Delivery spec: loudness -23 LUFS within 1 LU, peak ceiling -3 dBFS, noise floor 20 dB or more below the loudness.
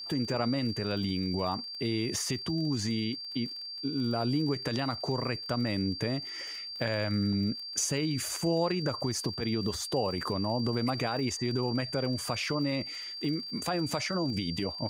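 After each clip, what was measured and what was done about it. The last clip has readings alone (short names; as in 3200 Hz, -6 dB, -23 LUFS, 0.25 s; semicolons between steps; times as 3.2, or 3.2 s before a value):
ticks 43/s; steady tone 4700 Hz; tone level -38 dBFS; loudness -31.0 LUFS; peak -16.0 dBFS; loudness target -23.0 LUFS
-> de-click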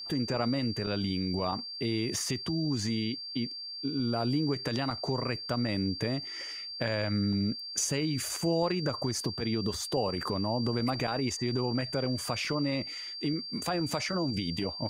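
ticks 0.27/s; steady tone 4700 Hz; tone level -38 dBFS
-> notch 4700 Hz, Q 30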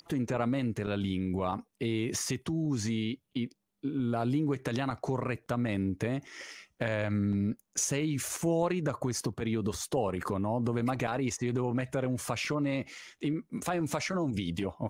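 steady tone none; loudness -32.0 LUFS; peak -15.5 dBFS; loudness target -23.0 LUFS
-> gain +9 dB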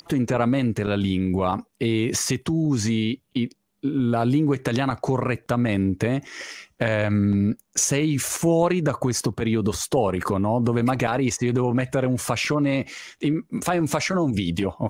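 loudness -23.0 LUFS; peak -6.5 dBFS; noise floor -65 dBFS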